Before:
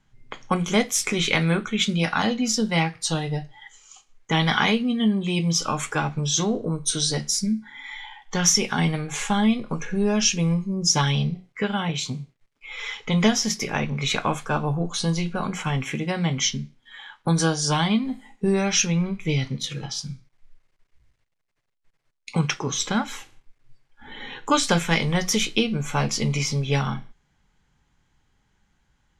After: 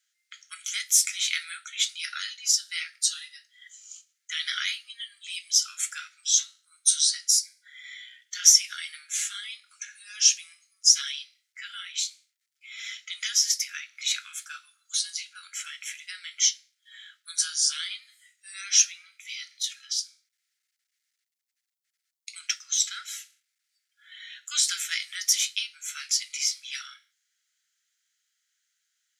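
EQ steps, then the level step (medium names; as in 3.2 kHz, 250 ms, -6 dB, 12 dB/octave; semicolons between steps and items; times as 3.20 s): rippled Chebyshev high-pass 1.3 kHz, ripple 3 dB; differentiator; +5.5 dB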